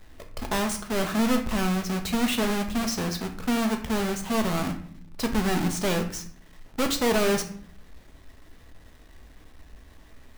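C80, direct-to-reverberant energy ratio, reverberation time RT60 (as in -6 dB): 14.0 dB, 4.0 dB, 0.55 s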